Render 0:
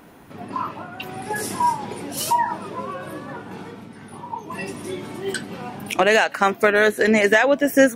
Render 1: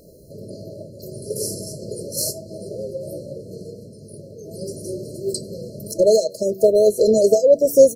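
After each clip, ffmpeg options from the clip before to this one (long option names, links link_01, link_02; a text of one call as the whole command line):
ffmpeg -i in.wav -af "bandreject=frequency=95.5:width_type=h:width=4,bandreject=frequency=191:width_type=h:width=4,bandreject=frequency=286.5:width_type=h:width=4,bandreject=frequency=382:width_type=h:width=4,bandreject=frequency=477.5:width_type=h:width=4,afftfilt=real='re*(1-between(b*sr/4096,660,4000))':imag='im*(1-between(b*sr/4096,660,4000))':win_size=4096:overlap=0.75,aecho=1:1:1.9:0.66,volume=2dB" out.wav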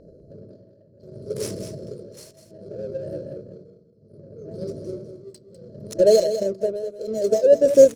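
ffmpeg -i in.wav -af "adynamicsmooth=sensitivity=6:basefreq=1700,tremolo=f=0.65:d=0.9,aecho=1:1:200:0.299" out.wav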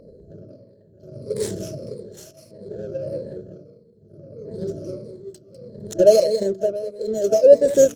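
ffmpeg -i in.wav -af "afftfilt=real='re*pow(10,9/40*sin(2*PI*(0.94*log(max(b,1)*sr/1024/100)/log(2)-(-1.6)*(pts-256)/sr)))':imag='im*pow(10,9/40*sin(2*PI*(0.94*log(max(b,1)*sr/1024/100)/log(2)-(-1.6)*(pts-256)/sr)))':win_size=1024:overlap=0.75,volume=1dB" out.wav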